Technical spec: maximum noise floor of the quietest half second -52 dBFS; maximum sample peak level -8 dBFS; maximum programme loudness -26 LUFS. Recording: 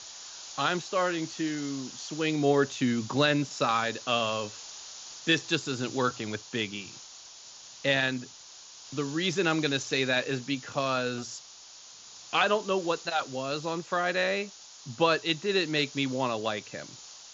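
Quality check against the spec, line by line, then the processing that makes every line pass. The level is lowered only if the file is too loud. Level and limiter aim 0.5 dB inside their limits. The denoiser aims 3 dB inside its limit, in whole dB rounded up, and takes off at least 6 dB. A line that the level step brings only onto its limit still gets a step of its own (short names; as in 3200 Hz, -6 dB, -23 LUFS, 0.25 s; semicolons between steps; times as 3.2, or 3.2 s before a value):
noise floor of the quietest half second -50 dBFS: fail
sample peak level -10.5 dBFS: OK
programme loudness -29.0 LUFS: OK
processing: denoiser 6 dB, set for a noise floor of -50 dBFS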